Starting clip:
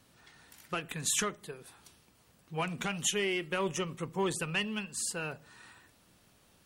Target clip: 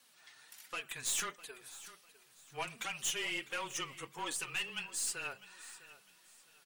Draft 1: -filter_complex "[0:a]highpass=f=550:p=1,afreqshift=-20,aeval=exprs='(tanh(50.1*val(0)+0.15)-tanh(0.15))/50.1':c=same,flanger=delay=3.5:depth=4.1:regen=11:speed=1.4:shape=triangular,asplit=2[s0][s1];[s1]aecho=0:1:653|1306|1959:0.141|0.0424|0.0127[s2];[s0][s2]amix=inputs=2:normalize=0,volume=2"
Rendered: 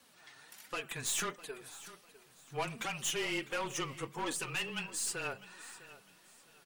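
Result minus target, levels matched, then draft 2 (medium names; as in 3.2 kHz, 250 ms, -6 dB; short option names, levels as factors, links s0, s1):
500 Hz band +6.0 dB
-filter_complex "[0:a]highpass=f=2000:p=1,afreqshift=-20,aeval=exprs='(tanh(50.1*val(0)+0.15)-tanh(0.15))/50.1':c=same,flanger=delay=3.5:depth=4.1:regen=11:speed=1.4:shape=triangular,asplit=2[s0][s1];[s1]aecho=0:1:653|1306|1959:0.141|0.0424|0.0127[s2];[s0][s2]amix=inputs=2:normalize=0,volume=2"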